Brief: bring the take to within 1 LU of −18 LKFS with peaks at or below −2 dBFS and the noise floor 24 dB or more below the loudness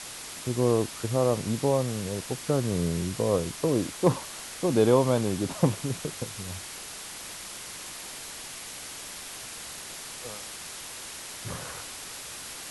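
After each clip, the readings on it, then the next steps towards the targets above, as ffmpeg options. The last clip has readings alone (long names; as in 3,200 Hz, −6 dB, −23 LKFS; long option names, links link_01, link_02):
background noise floor −41 dBFS; target noise floor −54 dBFS; integrated loudness −29.5 LKFS; sample peak −8.0 dBFS; target loudness −18.0 LKFS
→ -af "afftdn=noise_reduction=13:noise_floor=-41"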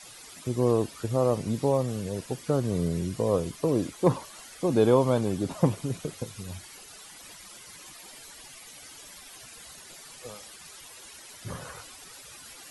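background noise floor −48 dBFS; target noise floor −52 dBFS
→ -af "afftdn=noise_reduction=6:noise_floor=-48"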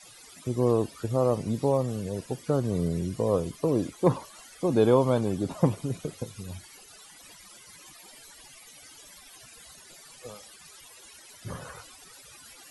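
background noise floor −51 dBFS; target noise floor −52 dBFS
→ -af "afftdn=noise_reduction=6:noise_floor=-51"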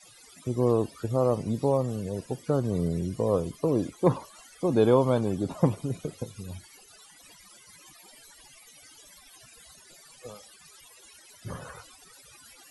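background noise floor −54 dBFS; integrated loudness −27.5 LKFS; sample peak −8.0 dBFS; target loudness −18.0 LKFS
→ -af "volume=9.5dB,alimiter=limit=-2dB:level=0:latency=1"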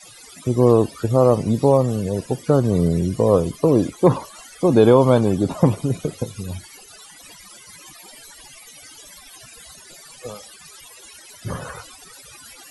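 integrated loudness −18.5 LKFS; sample peak −2.0 dBFS; background noise floor −45 dBFS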